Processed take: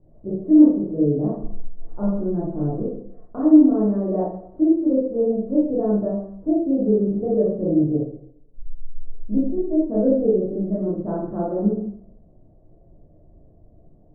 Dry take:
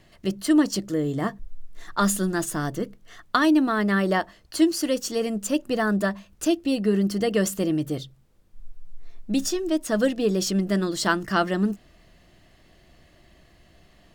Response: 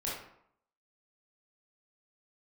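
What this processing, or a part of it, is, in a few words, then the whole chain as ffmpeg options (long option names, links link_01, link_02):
next room: -filter_complex "[0:a]lowpass=frequency=610:width=0.5412,lowpass=frequency=610:width=1.3066[link_01];[1:a]atrim=start_sample=2205[link_02];[link_01][link_02]afir=irnorm=-1:irlink=0"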